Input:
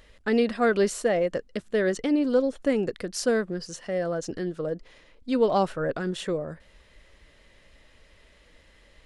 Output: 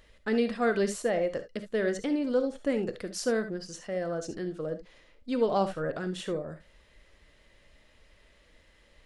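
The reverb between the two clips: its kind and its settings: non-linear reverb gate 90 ms rising, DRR 9.5 dB; gain -4.5 dB

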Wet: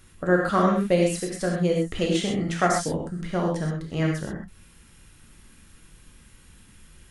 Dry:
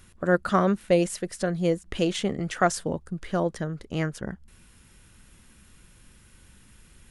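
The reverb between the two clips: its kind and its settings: non-linear reverb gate 0.15 s flat, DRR -1 dB; gain -1.5 dB

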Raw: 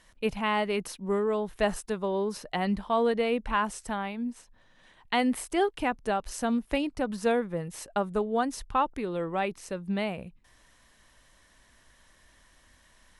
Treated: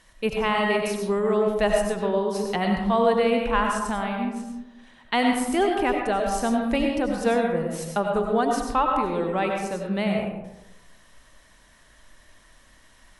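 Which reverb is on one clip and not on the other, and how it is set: digital reverb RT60 0.98 s, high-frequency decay 0.4×, pre-delay 55 ms, DRR 1 dB; gain +3 dB

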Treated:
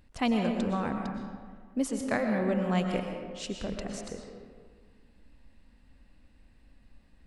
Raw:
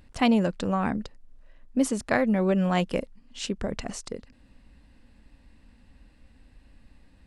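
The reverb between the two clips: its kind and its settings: digital reverb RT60 1.7 s, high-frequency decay 0.55×, pre-delay 80 ms, DRR 3 dB; gain -6 dB

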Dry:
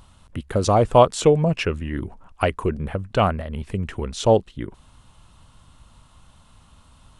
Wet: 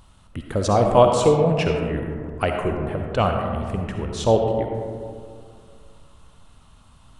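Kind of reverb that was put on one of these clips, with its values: digital reverb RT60 2.2 s, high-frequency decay 0.3×, pre-delay 25 ms, DRR 2.5 dB; gain -2 dB

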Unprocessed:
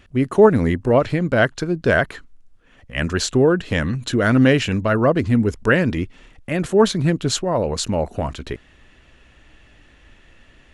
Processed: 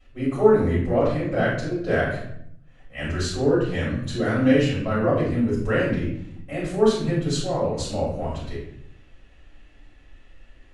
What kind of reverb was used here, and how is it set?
shoebox room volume 140 m³, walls mixed, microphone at 5.4 m; gain -21.5 dB

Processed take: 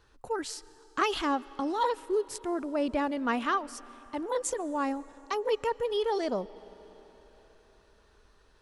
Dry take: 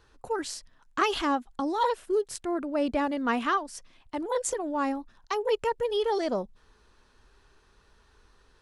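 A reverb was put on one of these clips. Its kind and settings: digital reverb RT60 4.4 s, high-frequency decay 0.85×, pre-delay 95 ms, DRR 19.5 dB; gain -2 dB

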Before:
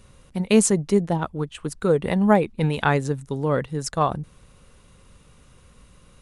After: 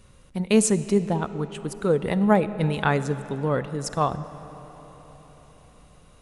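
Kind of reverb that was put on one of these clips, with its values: digital reverb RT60 4.8 s, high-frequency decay 0.6×, pre-delay 10 ms, DRR 13 dB; gain -2 dB

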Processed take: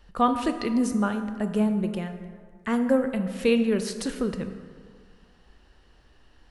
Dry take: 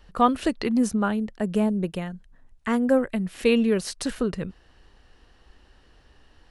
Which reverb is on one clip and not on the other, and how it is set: plate-style reverb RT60 1.9 s, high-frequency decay 0.5×, DRR 7.5 dB; gain -2.5 dB

